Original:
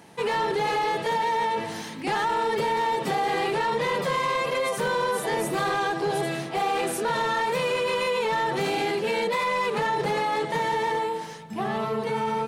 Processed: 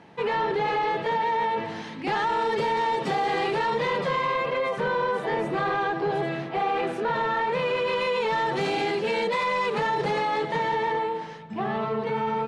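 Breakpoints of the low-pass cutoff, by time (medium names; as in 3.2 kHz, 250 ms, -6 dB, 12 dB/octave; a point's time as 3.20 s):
1.76 s 3.2 kHz
2.43 s 5.9 kHz
3.69 s 5.9 kHz
4.49 s 2.7 kHz
7.44 s 2.7 kHz
8.43 s 6.1 kHz
10.11 s 6.1 kHz
10.97 s 3.2 kHz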